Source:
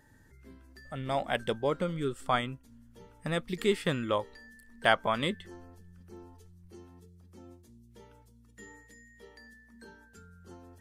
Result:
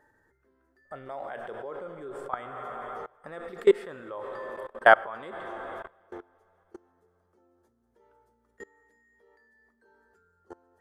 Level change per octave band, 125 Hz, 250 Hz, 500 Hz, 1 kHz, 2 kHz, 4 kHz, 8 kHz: below −15 dB, −4.0 dB, +4.0 dB, +4.5 dB, +5.5 dB, −8.5 dB, can't be measured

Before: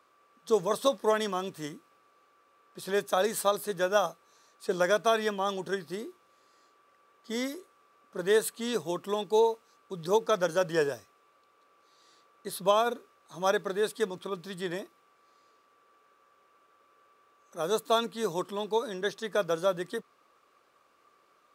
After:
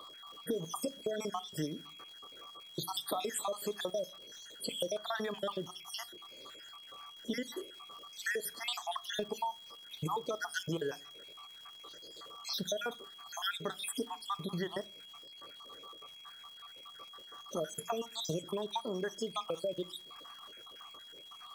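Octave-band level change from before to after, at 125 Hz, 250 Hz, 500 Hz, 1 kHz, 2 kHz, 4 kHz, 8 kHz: −2.0, −5.5, −11.0, −8.5, −7.0, −1.0, −3.0 decibels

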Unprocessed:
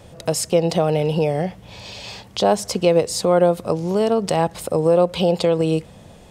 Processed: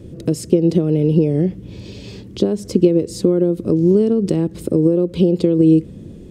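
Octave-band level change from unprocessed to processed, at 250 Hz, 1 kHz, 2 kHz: +8.5 dB, below −15 dB, below −10 dB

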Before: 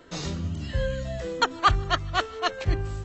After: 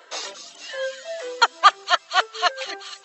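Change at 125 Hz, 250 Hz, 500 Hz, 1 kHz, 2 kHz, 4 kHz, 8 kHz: below −40 dB, below −15 dB, +1.5 dB, +6.5 dB, +6.5 dB, +7.0 dB, can't be measured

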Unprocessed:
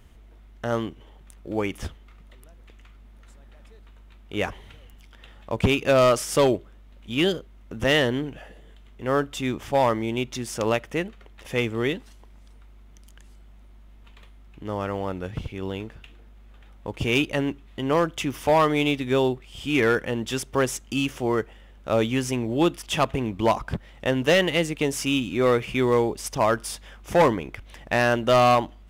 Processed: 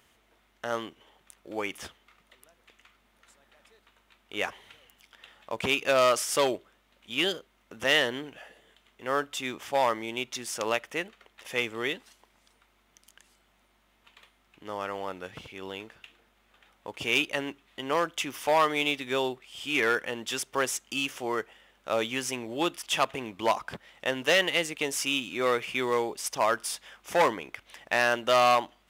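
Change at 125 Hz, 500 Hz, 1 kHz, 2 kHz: −17.0, −6.0, −3.0, −1.0 decibels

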